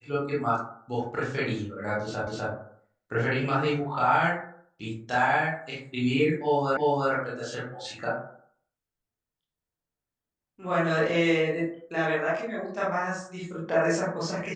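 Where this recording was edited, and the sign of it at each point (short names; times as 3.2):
2.27 repeat of the last 0.25 s
6.77 repeat of the last 0.35 s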